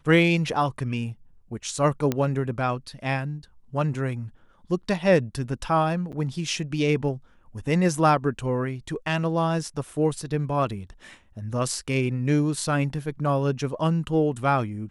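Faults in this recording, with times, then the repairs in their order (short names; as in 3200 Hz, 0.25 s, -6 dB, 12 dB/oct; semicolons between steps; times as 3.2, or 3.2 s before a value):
2.12 pop -11 dBFS
6.12–6.13 gap 8.1 ms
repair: de-click; interpolate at 6.12, 8.1 ms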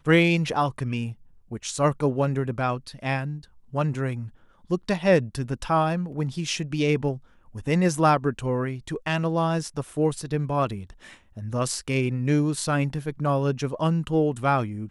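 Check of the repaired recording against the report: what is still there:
2.12 pop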